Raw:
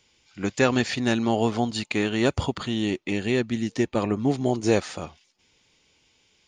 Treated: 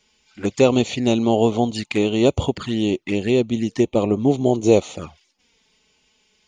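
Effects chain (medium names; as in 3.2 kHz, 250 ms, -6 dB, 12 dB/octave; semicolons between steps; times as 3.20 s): dynamic bell 500 Hz, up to +5 dB, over -34 dBFS, Q 1.2; touch-sensitive flanger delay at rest 4.8 ms, full sweep at -20.5 dBFS; trim +4 dB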